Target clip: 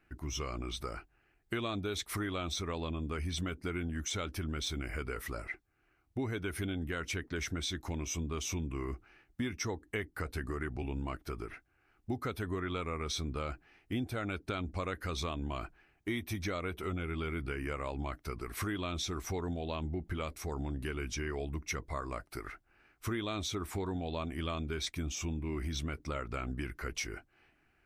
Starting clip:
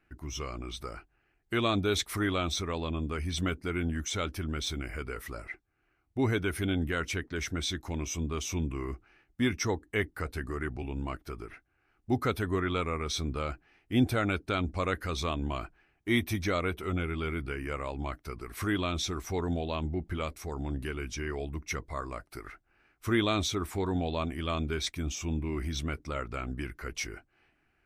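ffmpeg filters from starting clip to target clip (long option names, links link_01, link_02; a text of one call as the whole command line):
ffmpeg -i in.wav -af "acompressor=threshold=-34dB:ratio=6,volume=1dB" out.wav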